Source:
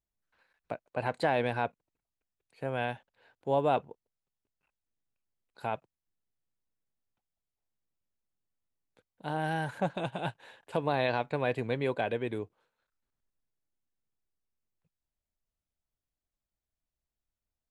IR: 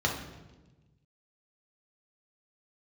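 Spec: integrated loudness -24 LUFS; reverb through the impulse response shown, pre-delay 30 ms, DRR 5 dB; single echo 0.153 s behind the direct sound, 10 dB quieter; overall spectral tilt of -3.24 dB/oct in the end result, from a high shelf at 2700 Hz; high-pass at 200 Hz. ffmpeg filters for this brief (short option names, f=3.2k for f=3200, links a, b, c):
-filter_complex "[0:a]highpass=200,highshelf=f=2.7k:g=7,aecho=1:1:153:0.316,asplit=2[a][b];[1:a]atrim=start_sample=2205,adelay=30[c];[b][c]afir=irnorm=-1:irlink=0,volume=-15dB[d];[a][d]amix=inputs=2:normalize=0,volume=7dB"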